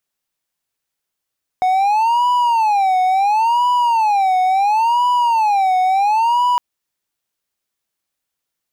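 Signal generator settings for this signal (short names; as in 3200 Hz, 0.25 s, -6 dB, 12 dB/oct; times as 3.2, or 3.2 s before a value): siren wail 739–983 Hz 0.72/s triangle -10 dBFS 4.96 s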